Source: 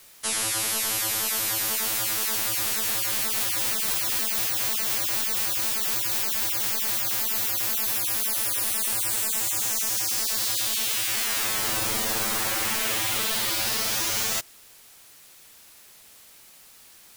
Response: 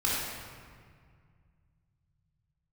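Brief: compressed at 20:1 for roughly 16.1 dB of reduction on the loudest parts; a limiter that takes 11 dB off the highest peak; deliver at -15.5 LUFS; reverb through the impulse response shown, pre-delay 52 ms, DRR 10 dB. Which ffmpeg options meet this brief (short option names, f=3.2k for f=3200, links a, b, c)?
-filter_complex "[0:a]acompressor=threshold=-39dB:ratio=20,alimiter=level_in=16dB:limit=-24dB:level=0:latency=1,volume=-16dB,asplit=2[a][b];[1:a]atrim=start_sample=2205,adelay=52[c];[b][c]afir=irnorm=-1:irlink=0,volume=-20.5dB[d];[a][d]amix=inputs=2:normalize=0,volume=29.5dB"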